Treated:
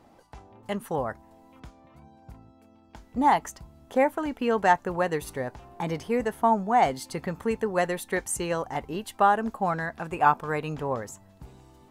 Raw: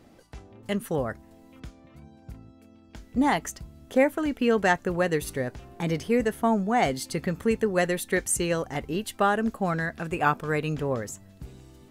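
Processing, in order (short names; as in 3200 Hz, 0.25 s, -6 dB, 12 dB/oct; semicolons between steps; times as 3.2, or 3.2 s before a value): bell 900 Hz +11.5 dB 0.88 oct; gain -4.5 dB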